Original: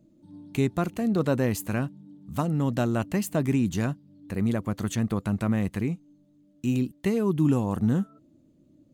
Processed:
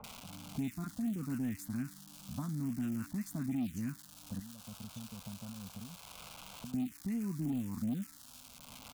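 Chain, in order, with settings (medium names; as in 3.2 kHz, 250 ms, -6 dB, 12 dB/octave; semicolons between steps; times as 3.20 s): small resonant body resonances 250/3500 Hz, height 15 dB, ringing for 55 ms; 4.39–6.74 s: compression 12:1, threshold -34 dBFS, peak gain reduction 25 dB; tilt shelf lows +3 dB; crackle 570 per s -29 dBFS; amplifier tone stack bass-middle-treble 5-5-5; bands offset in time lows, highs 40 ms, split 1.1 kHz; touch-sensitive phaser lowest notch 290 Hz, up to 2.7 kHz, full sweep at -19.5 dBFS; saturation -25 dBFS, distortion -18 dB; three bands compressed up and down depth 70%; trim -1.5 dB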